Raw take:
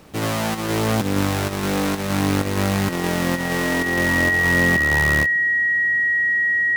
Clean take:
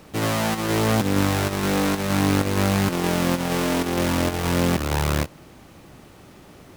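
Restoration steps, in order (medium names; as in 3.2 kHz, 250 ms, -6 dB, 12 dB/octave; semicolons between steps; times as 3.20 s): band-stop 1.9 kHz, Q 30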